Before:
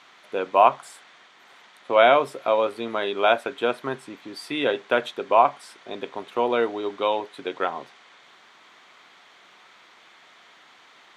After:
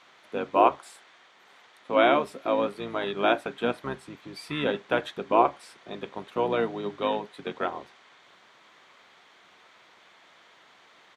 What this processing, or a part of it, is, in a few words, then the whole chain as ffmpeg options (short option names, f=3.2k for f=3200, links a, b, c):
octave pedal: -filter_complex "[0:a]asettb=1/sr,asplit=3[a][b][c];[a]atrim=end=0.794[d];[b]atrim=start=0.79:end=2.55,asetpts=PTS-STARTPTS,afade=t=in:d=0.004:c=qsin,afade=t=out:st=1.756:d=0.004:c=qsin,highpass=f=270:p=1[e];[c]atrim=start=2.546[f];[d][e]acrossfade=d=0.004:c1=hsin:c2=qsin[g];[g][f]acrossfade=d=0.004:c1=qsin:c2=hsin,asplit=2[h][i];[i]asetrate=22050,aresample=44100,atempo=2,volume=-7dB[j];[h][j]amix=inputs=2:normalize=0,volume=-4.5dB"